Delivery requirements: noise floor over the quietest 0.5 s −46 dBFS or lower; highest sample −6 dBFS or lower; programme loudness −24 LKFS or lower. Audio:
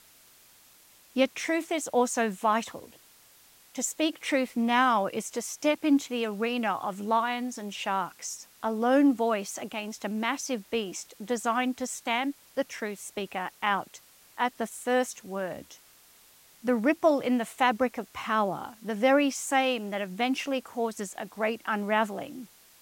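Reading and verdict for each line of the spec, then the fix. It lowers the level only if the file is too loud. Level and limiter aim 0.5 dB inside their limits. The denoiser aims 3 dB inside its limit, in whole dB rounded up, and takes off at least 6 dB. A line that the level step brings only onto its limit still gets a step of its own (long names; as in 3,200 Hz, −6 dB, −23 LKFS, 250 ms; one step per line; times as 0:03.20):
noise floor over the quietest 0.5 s −57 dBFS: in spec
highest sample −9.0 dBFS: in spec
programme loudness −28.5 LKFS: in spec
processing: no processing needed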